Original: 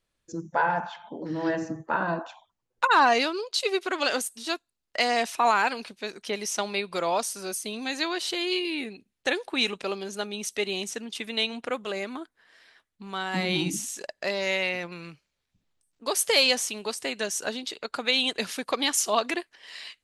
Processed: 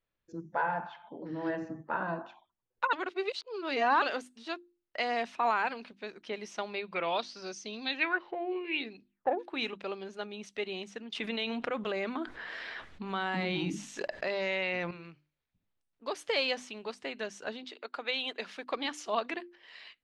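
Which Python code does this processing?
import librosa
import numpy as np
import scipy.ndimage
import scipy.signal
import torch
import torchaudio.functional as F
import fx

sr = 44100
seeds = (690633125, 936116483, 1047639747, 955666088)

y = fx.filter_lfo_lowpass(x, sr, shape='sine', hz=fx.line((6.94, 0.29), (9.38, 1.5)), low_hz=720.0, high_hz=5900.0, q=5.6, at=(6.94, 9.38), fade=0.02)
y = fx.env_flatten(y, sr, amount_pct=70, at=(11.12, 14.91))
y = fx.highpass(y, sr, hz=330.0, slope=12, at=(17.66, 18.72))
y = fx.edit(y, sr, fx.reverse_span(start_s=2.93, length_s=1.09), tone=tone)
y = scipy.signal.sosfilt(scipy.signal.butter(2, 3100.0, 'lowpass', fs=sr, output='sos'), y)
y = fx.hum_notches(y, sr, base_hz=50, count=7)
y = y * 10.0 ** (-6.5 / 20.0)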